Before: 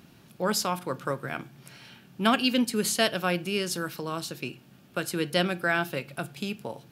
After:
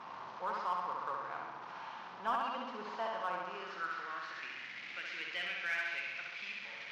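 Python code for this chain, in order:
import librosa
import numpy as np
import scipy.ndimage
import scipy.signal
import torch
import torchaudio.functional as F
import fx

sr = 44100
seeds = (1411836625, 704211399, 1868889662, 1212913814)

p1 = fx.delta_mod(x, sr, bps=32000, step_db=-28.5)
p2 = fx.filter_sweep_bandpass(p1, sr, from_hz=990.0, to_hz=2200.0, start_s=3.3, end_s=4.8, q=4.4)
p3 = fx.room_flutter(p2, sr, wall_m=11.4, rt60_s=1.2)
p4 = np.clip(p3, -10.0 ** (-30.0 / 20.0), 10.0 ** (-30.0 / 20.0))
p5 = p3 + F.gain(torch.from_numpy(p4), -3.0).numpy()
y = F.gain(torch.from_numpy(p5), -6.0).numpy()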